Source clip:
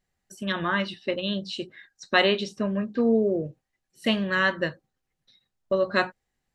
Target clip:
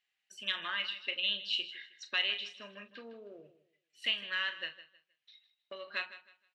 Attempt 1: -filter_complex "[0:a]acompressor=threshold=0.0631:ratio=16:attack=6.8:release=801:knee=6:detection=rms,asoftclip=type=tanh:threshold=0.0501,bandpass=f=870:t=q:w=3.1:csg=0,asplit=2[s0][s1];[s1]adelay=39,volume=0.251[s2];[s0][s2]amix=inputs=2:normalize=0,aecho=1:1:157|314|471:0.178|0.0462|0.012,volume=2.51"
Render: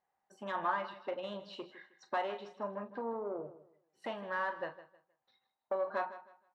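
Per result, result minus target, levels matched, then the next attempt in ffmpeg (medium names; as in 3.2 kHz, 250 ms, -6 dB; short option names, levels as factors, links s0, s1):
1 kHz band +15.5 dB; saturation: distortion +13 dB
-filter_complex "[0:a]acompressor=threshold=0.0631:ratio=16:attack=6.8:release=801:knee=6:detection=rms,asoftclip=type=tanh:threshold=0.0501,bandpass=f=2800:t=q:w=3.1:csg=0,asplit=2[s0][s1];[s1]adelay=39,volume=0.251[s2];[s0][s2]amix=inputs=2:normalize=0,aecho=1:1:157|314|471:0.178|0.0462|0.012,volume=2.51"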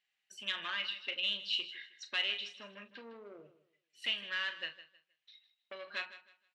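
saturation: distortion +13 dB
-filter_complex "[0:a]acompressor=threshold=0.0631:ratio=16:attack=6.8:release=801:knee=6:detection=rms,asoftclip=type=tanh:threshold=0.141,bandpass=f=2800:t=q:w=3.1:csg=0,asplit=2[s0][s1];[s1]adelay=39,volume=0.251[s2];[s0][s2]amix=inputs=2:normalize=0,aecho=1:1:157|314|471:0.178|0.0462|0.012,volume=2.51"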